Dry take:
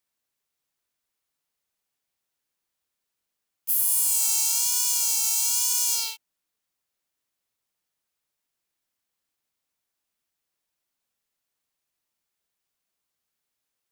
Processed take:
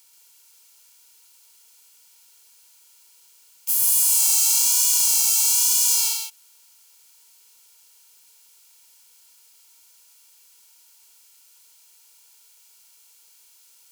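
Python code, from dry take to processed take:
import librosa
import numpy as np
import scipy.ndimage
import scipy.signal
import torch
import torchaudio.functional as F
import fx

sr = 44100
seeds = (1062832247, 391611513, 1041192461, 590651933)

p1 = fx.bin_compress(x, sr, power=0.6)
y = p1 + fx.echo_single(p1, sr, ms=132, db=-3.5, dry=0)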